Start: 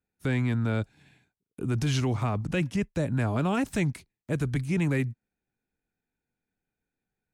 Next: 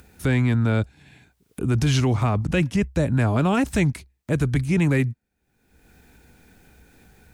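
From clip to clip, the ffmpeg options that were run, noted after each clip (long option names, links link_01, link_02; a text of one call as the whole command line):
ffmpeg -i in.wav -af "equalizer=frequency=65:width_type=o:width=0.39:gain=14,acompressor=mode=upward:threshold=-37dB:ratio=2.5,volume=6dB" out.wav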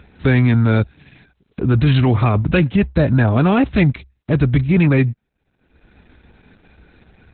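ffmpeg -i in.wav -af "volume=6.5dB" -ar 48000 -c:a libopus -b:a 8k out.opus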